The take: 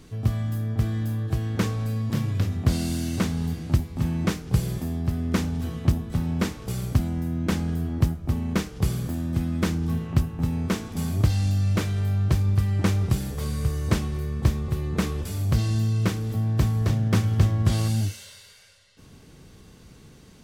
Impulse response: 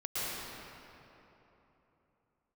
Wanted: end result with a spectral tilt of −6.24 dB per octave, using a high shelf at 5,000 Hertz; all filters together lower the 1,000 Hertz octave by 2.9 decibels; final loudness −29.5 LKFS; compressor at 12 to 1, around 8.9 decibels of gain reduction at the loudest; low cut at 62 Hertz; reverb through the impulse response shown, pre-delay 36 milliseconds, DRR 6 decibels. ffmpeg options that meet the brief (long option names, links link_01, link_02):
-filter_complex "[0:a]highpass=62,equalizer=frequency=1000:width_type=o:gain=-4,highshelf=frequency=5000:gain=6,acompressor=threshold=-24dB:ratio=12,asplit=2[link_01][link_02];[1:a]atrim=start_sample=2205,adelay=36[link_03];[link_02][link_03]afir=irnorm=-1:irlink=0,volume=-12.5dB[link_04];[link_01][link_04]amix=inputs=2:normalize=0,volume=-0.5dB"